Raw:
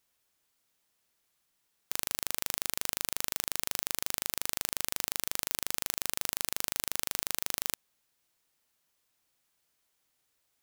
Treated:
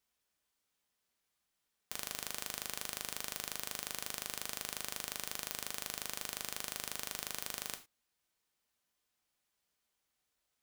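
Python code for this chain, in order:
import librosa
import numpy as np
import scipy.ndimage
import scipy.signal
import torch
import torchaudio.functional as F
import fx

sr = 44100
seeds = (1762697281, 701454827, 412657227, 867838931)

y = fx.high_shelf(x, sr, hz=10000.0, db=-5.0)
y = fx.rev_gated(y, sr, seeds[0], gate_ms=130, shape='falling', drr_db=5.5)
y = F.gain(torch.from_numpy(y), -6.0).numpy()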